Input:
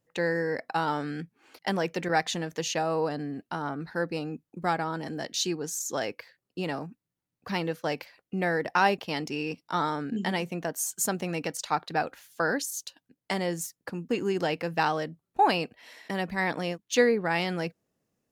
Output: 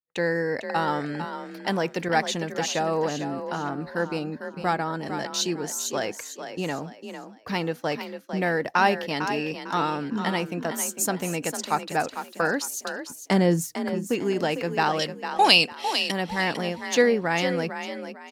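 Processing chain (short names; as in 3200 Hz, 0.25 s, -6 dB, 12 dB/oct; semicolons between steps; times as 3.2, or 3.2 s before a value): 12.71–13.75 low shelf 440 Hz +12 dB; expander -55 dBFS; 14.99–16.12 band shelf 5500 Hz +15.5 dB 2.5 oct; on a send: frequency-shifting echo 0.451 s, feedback 32%, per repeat +37 Hz, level -9 dB; on the sum: gain +2.5 dB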